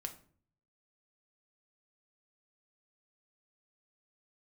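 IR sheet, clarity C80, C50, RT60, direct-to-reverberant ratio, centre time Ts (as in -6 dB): 17.5 dB, 13.0 dB, 0.50 s, 4.5 dB, 9 ms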